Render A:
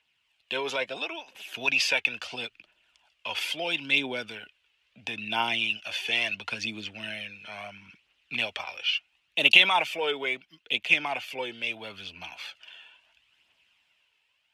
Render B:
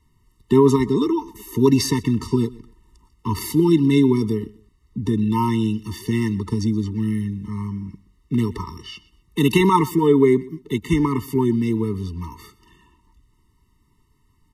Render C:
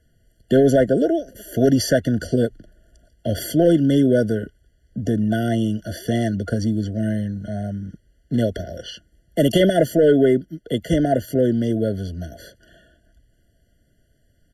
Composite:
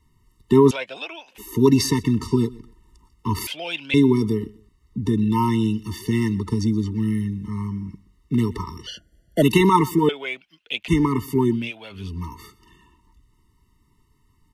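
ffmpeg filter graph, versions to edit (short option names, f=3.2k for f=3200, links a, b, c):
-filter_complex "[0:a]asplit=4[a][b][c][d];[1:a]asplit=6[e][f][g][h][i][j];[e]atrim=end=0.712[k];[a]atrim=start=0.708:end=1.382[l];[f]atrim=start=1.378:end=3.472[m];[b]atrim=start=3.468:end=3.942[n];[g]atrim=start=3.938:end=8.872[o];[2:a]atrim=start=8.868:end=9.422[p];[h]atrim=start=9.418:end=10.092[q];[c]atrim=start=10.088:end=10.882[r];[i]atrim=start=10.878:end=11.72[s];[d]atrim=start=11.48:end=12.14[t];[j]atrim=start=11.9[u];[k][l]acrossfade=d=0.004:c1=hsin:c2=hsin[v];[v][m]acrossfade=d=0.004:c1=hsin:c2=hsin[w];[w][n]acrossfade=d=0.004:c1=hsin:c2=hsin[x];[x][o]acrossfade=d=0.004:c1=hsin:c2=hsin[y];[y][p]acrossfade=d=0.004:c1=hsin:c2=hsin[z];[z][q]acrossfade=d=0.004:c1=hsin:c2=hsin[aa];[aa][r]acrossfade=d=0.004:c1=hsin:c2=hsin[ab];[ab][s]acrossfade=d=0.004:c1=hsin:c2=hsin[ac];[ac][t]acrossfade=d=0.24:c1=tri:c2=tri[ad];[ad][u]acrossfade=d=0.24:c1=tri:c2=tri"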